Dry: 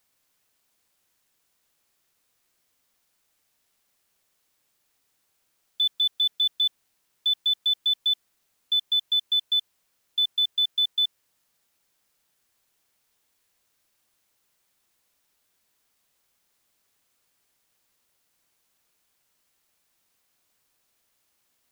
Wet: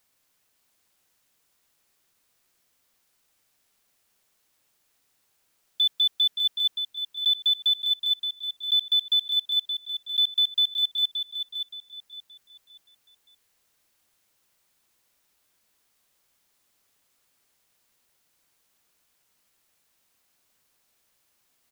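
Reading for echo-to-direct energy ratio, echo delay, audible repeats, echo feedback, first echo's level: -7.5 dB, 573 ms, 3, 31%, -8.0 dB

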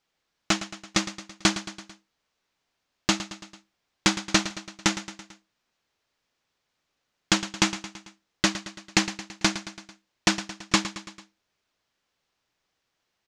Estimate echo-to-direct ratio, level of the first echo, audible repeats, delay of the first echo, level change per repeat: -11.5 dB, -13.0 dB, 4, 111 ms, -4.5 dB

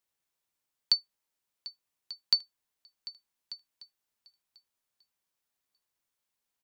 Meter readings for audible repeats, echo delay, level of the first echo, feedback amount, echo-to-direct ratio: 2, 744 ms, -18.0 dB, 34%, -17.5 dB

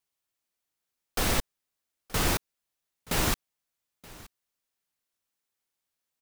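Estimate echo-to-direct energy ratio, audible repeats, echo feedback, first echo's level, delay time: -21.5 dB, 1, no regular repeats, -21.5 dB, 925 ms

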